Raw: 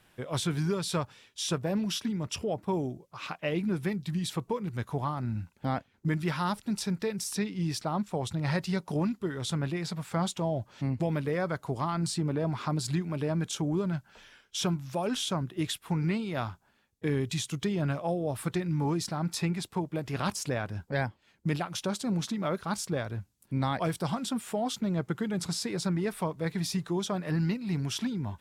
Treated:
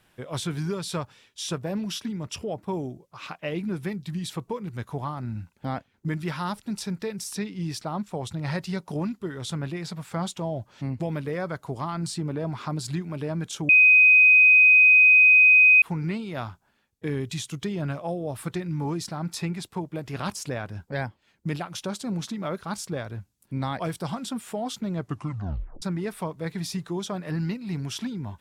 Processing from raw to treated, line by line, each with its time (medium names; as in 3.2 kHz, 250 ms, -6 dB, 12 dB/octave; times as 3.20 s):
13.69–15.82 s: bleep 2.51 kHz -11.5 dBFS
25.00 s: tape stop 0.82 s